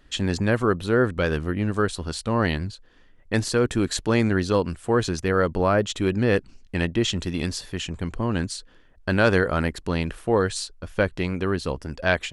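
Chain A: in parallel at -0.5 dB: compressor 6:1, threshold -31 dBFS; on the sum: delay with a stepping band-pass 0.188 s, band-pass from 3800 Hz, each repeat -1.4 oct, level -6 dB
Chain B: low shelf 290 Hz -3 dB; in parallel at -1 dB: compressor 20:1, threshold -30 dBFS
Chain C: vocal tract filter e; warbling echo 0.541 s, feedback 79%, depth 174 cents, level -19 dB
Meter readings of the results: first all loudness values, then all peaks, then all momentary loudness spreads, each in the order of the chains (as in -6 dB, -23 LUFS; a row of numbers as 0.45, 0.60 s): -22.0, -23.5, -34.0 LUFS; -4.0, -5.0, -15.5 dBFS; 8, 7, 15 LU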